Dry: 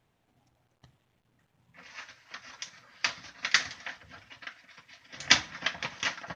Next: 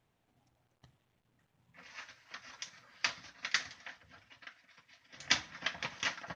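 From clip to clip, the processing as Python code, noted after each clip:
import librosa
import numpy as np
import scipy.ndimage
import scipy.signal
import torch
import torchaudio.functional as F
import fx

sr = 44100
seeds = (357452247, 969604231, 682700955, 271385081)

y = fx.rider(x, sr, range_db=3, speed_s=0.5)
y = y * librosa.db_to_amplitude(-7.0)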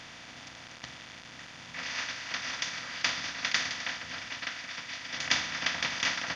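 y = fx.bin_compress(x, sr, power=0.4)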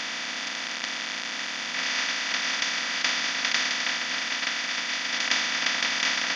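y = fx.bin_compress(x, sr, power=0.4)
y = fx.brickwall_highpass(y, sr, low_hz=170.0)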